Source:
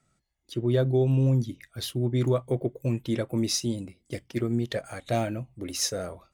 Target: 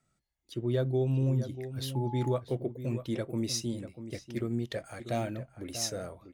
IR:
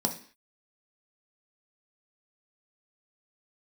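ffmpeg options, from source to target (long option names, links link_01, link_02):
-filter_complex "[0:a]asplit=2[link_01][link_02];[link_02]adelay=641.4,volume=-11dB,highshelf=frequency=4000:gain=-14.4[link_03];[link_01][link_03]amix=inputs=2:normalize=0,asettb=1/sr,asplit=3[link_04][link_05][link_06];[link_04]atrim=end=1.954[link_07];[link_05]atrim=start=1.95:end=2.36,asetpts=PTS-STARTPTS,afade=type=in:duration=0.004:curve=qsin,afade=type=out:start_time=0.406:duration=0.004:curve=qsin,aeval=exprs='val(0)+0.02*sin(2*PI*850*n/s)':channel_layout=same[link_08];[link_06]atrim=start=2.356[link_09];[link_07][link_08]acrossfade=duration=0.004:curve1=hsin:curve2=qsin[link_10];[link_10][link_09]acrossfade=duration=0.004:curve1=qsin:curve2=hsin,volume=-5.5dB"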